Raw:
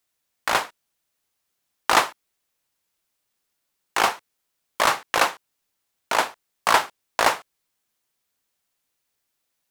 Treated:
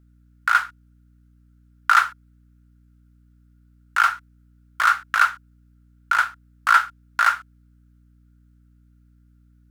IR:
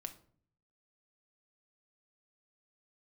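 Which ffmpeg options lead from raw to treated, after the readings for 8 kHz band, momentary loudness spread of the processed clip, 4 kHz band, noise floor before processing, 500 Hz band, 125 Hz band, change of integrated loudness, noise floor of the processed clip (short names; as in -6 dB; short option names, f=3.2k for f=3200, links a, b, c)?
-7.5 dB, 10 LU, -6.5 dB, -78 dBFS, -20.5 dB, n/a, +2.5 dB, -56 dBFS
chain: -af "highpass=f=1.4k:t=q:w=12,aeval=exprs='val(0)+0.00501*(sin(2*PI*60*n/s)+sin(2*PI*2*60*n/s)/2+sin(2*PI*3*60*n/s)/3+sin(2*PI*4*60*n/s)/4+sin(2*PI*5*60*n/s)/5)':c=same,volume=-8dB"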